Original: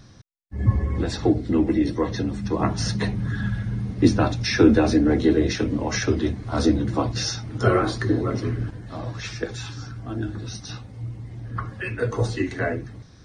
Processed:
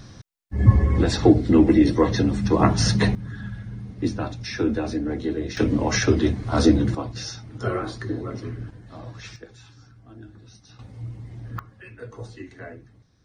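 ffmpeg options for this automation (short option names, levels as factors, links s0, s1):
-af "asetnsamples=n=441:p=0,asendcmd='3.15 volume volume -8dB;5.57 volume volume 3dB;6.95 volume volume -7dB;9.36 volume volume -15dB;10.79 volume volume -2dB;11.59 volume volume -14dB',volume=1.78"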